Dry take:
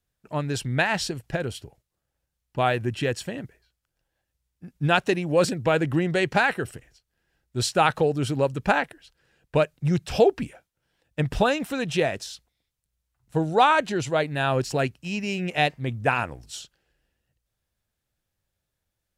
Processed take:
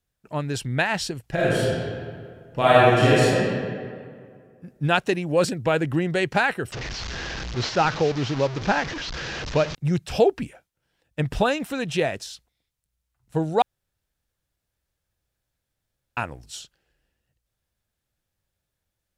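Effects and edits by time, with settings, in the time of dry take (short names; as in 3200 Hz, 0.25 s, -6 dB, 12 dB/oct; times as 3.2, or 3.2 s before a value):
1.34–3.34 reverb throw, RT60 2.1 s, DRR -9 dB
6.72–9.75 delta modulation 32 kbps, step -25.5 dBFS
13.62–16.17 room tone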